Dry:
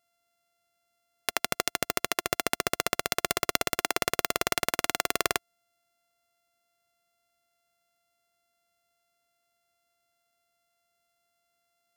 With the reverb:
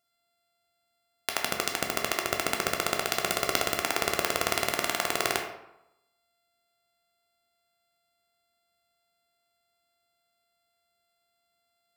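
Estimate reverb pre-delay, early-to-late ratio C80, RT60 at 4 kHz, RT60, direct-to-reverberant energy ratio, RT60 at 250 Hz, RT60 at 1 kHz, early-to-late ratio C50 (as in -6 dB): 10 ms, 9.0 dB, 0.55 s, 0.90 s, 1.5 dB, 0.85 s, 0.90 s, 6.0 dB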